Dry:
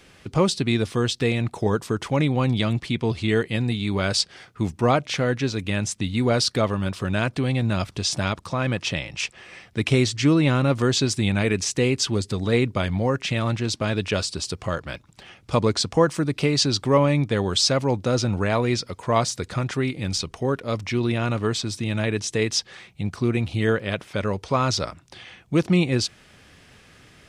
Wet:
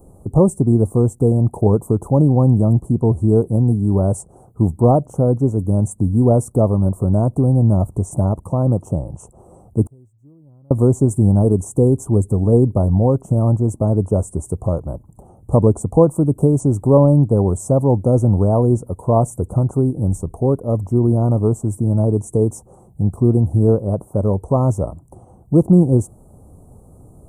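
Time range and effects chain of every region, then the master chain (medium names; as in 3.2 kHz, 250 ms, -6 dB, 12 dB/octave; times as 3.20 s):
9.84–10.71 s: companding laws mixed up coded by mu + peaking EQ 100 Hz +5 dB 1.2 oct + inverted gate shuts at -26 dBFS, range -39 dB
whole clip: inverse Chebyshev band-stop 1.7–5 kHz, stop band 50 dB; bass shelf 100 Hz +10 dB; trim +6 dB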